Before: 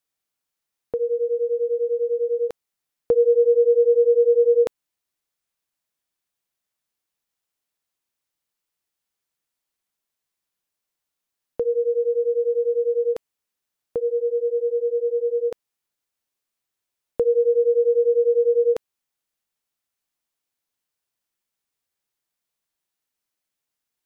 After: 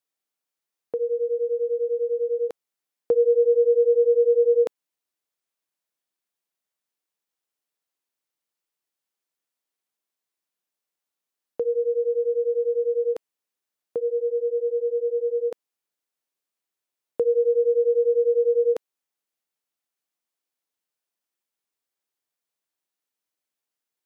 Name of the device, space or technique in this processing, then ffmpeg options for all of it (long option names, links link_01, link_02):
filter by subtraction: -filter_complex "[0:a]asplit=2[link_01][link_02];[link_02]lowpass=360,volume=-1[link_03];[link_01][link_03]amix=inputs=2:normalize=0,volume=-4dB"